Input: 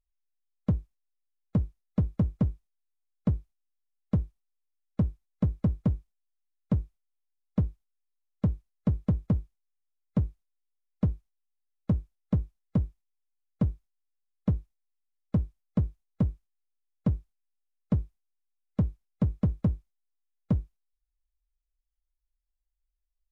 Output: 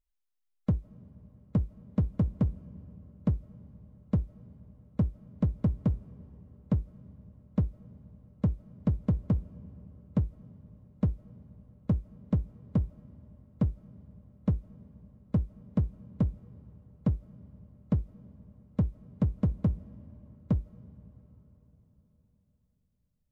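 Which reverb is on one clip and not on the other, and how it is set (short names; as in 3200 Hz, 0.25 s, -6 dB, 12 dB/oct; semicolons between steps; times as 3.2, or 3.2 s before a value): digital reverb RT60 4.5 s, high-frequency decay 0.75×, pre-delay 0.115 s, DRR 18.5 dB; gain -1 dB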